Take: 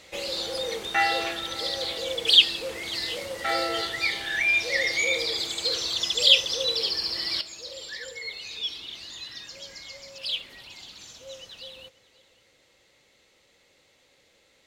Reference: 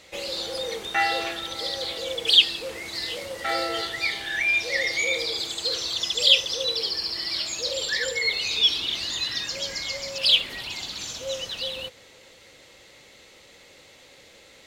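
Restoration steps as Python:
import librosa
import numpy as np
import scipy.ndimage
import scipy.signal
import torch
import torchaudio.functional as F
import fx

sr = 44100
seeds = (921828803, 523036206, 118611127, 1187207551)

y = fx.fix_echo_inverse(x, sr, delay_ms=540, level_db=-21.5)
y = fx.gain(y, sr, db=fx.steps((0.0, 0.0), (7.41, 11.5)))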